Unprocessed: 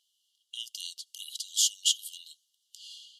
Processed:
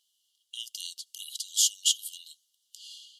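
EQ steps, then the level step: treble shelf 6.4 kHz +5.5 dB; -1.0 dB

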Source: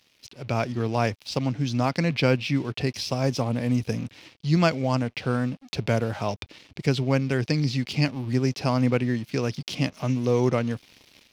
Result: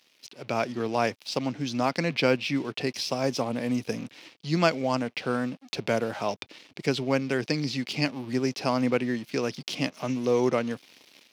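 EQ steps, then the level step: high-pass 230 Hz 12 dB/octave; 0.0 dB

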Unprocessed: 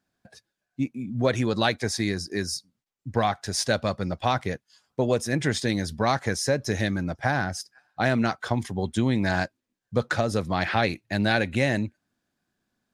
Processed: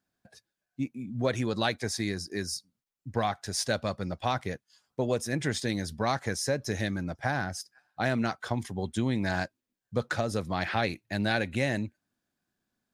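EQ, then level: treble shelf 10 kHz +5.5 dB; -5.0 dB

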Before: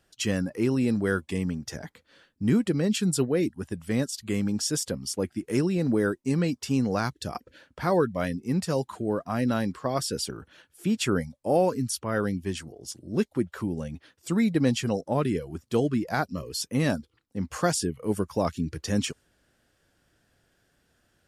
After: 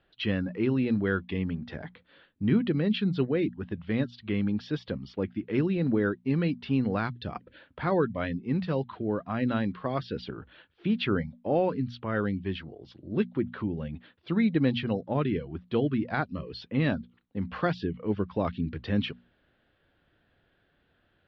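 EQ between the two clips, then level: steep low-pass 3.9 kHz 48 dB/octave; hum notches 60/120/180/240 Hz; dynamic bell 680 Hz, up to -4 dB, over -39 dBFS, Q 0.85; 0.0 dB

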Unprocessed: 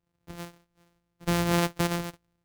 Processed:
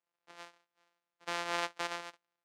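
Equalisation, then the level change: high-pass 750 Hz 12 dB/octave; distance through air 80 m; -3.5 dB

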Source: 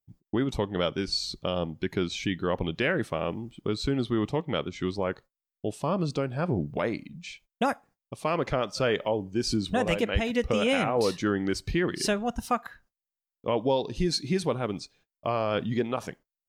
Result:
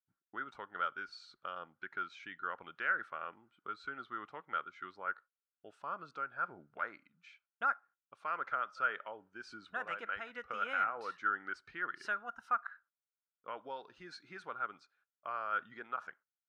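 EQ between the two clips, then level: band-pass filter 1.4 kHz, Q 10; +6.0 dB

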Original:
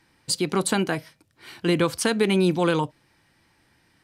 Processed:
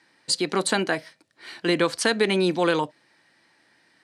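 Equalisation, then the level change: cabinet simulation 230–10000 Hz, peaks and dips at 620 Hz +4 dB, 1.8 kHz +6 dB, 4.2 kHz +5 dB; 0.0 dB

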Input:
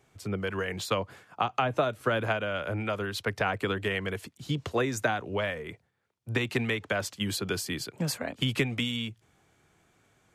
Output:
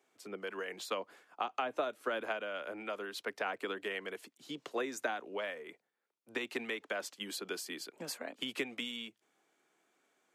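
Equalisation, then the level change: high-pass 260 Hz 24 dB/octave; -8.0 dB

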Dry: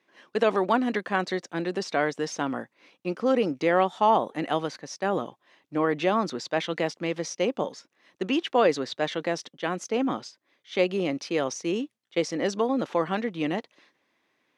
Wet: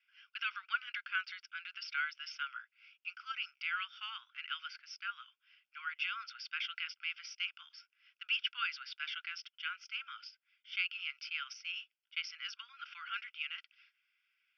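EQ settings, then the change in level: Chebyshev band-pass 1.4–5.4 kHz, order 5; distance through air 120 m; static phaser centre 2.7 kHz, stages 8; +2.5 dB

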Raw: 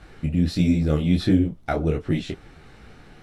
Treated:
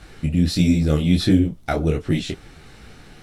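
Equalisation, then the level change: bass shelf 470 Hz +3 dB; treble shelf 3 kHz +11 dB; 0.0 dB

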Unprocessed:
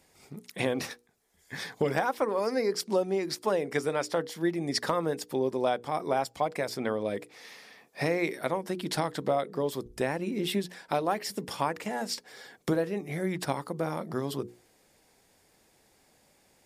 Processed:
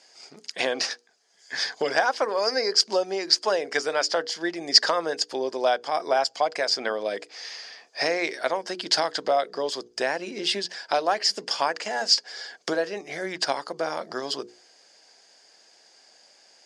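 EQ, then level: cabinet simulation 410–8300 Hz, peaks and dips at 670 Hz +5 dB, 1.6 kHz +7 dB, 3 kHz +6 dB, 4.5 kHz +5 dB, 6.4 kHz +9 dB; peaking EQ 4.9 kHz +12 dB 0.23 oct; +3.0 dB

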